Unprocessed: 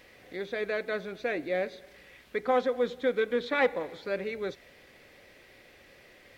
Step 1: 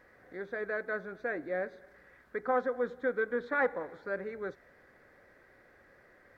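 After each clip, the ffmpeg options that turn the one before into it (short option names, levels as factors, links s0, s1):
-af "highshelf=f=2100:t=q:w=3:g=-9.5,volume=0.562"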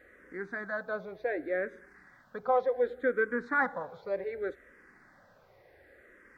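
-filter_complex "[0:a]asplit=2[s0][s1];[s1]afreqshift=-0.67[s2];[s0][s2]amix=inputs=2:normalize=1,volume=1.68"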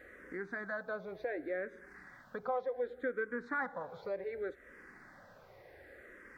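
-af "acompressor=threshold=0.00562:ratio=2,volume=1.41"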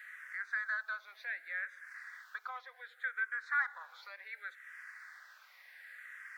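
-af "highpass=f=1400:w=0.5412,highpass=f=1400:w=1.3066,volume=2.37"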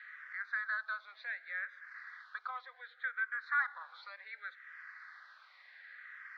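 -af "highpass=400,equalizer=f=1200:t=q:w=4:g=5,equalizer=f=2700:t=q:w=4:g=-4,equalizer=f=4100:t=q:w=4:g=6,lowpass=f=4400:w=0.5412,lowpass=f=4400:w=1.3066,volume=0.891"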